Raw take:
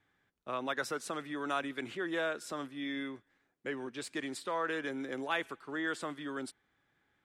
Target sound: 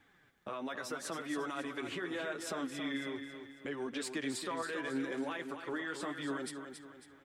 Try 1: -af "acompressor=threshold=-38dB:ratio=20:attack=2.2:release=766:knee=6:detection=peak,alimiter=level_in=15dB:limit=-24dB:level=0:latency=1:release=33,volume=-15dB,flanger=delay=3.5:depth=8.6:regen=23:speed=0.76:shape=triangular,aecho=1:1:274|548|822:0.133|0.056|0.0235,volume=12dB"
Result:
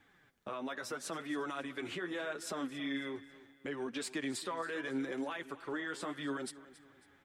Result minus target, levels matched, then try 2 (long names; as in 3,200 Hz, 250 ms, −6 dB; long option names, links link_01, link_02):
echo-to-direct −9.5 dB
-af "acompressor=threshold=-38dB:ratio=20:attack=2.2:release=766:knee=6:detection=peak,alimiter=level_in=15dB:limit=-24dB:level=0:latency=1:release=33,volume=-15dB,flanger=delay=3.5:depth=8.6:regen=23:speed=0.76:shape=triangular,aecho=1:1:274|548|822|1096|1370:0.398|0.167|0.0702|0.0295|0.0124,volume=12dB"